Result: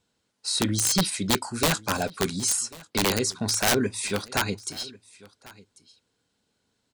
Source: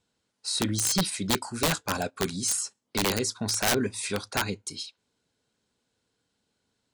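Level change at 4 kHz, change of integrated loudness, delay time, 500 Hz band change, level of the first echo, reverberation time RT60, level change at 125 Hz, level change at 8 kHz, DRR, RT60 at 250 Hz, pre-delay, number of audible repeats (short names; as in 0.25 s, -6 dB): +2.5 dB, +2.5 dB, 1.093 s, +2.5 dB, -22.0 dB, none, +2.5 dB, +2.5 dB, none, none, none, 1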